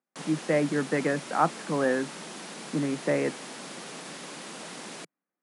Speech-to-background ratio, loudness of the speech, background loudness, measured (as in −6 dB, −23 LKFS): 12.0 dB, −28.0 LKFS, −40.0 LKFS